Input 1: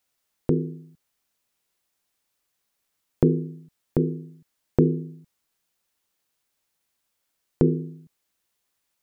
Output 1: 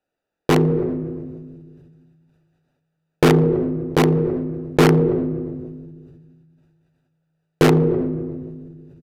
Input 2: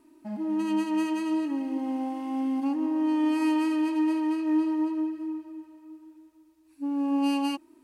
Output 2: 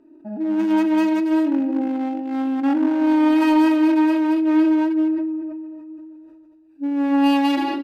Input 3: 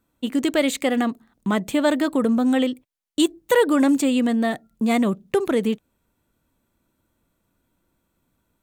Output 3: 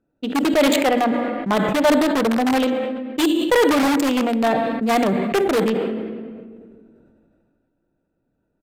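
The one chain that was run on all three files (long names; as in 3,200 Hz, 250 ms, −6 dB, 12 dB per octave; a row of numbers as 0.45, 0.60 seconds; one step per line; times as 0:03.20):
adaptive Wiener filter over 41 samples
rectangular room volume 2,000 cubic metres, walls mixed, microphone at 0.41 metres
bad sample-rate conversion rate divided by 2×, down filtered, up zero stuff
mains-hum notches 60/120/180/240/300 Hz
dynamic equaliser 750 Hz, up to +5 dB, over −40 dBFS, Q 2
in parallel at −7 dB: wrap-around overflow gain 9.5 dB
on the sum: downsampling to 32,000 Hz
mid-hump overdrive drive 14 dB, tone 3,400 Hz, clips at −4 dBFS
level that may fall only so fast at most 26 dB per second
loudness normalisation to −19 LKFS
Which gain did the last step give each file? +3.0, +2.5, −2.5 decibels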